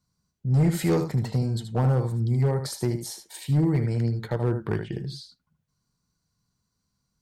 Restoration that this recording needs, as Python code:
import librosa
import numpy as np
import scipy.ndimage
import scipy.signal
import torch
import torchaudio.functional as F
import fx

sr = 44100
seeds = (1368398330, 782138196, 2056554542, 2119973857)

y = fx.fix_declip(x, sr, threshold_db=-16.0)
y = fx.fix_echo_inverse(y, sr, delay_ms=77, level_db=-8.5)